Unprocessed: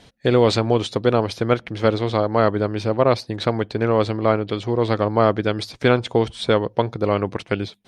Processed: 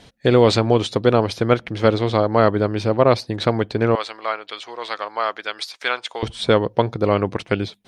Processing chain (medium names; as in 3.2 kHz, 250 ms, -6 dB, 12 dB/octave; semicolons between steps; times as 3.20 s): 3.95–6.23 s: high-pass 1.1 kHz 12 dB/octave; trim +2 dB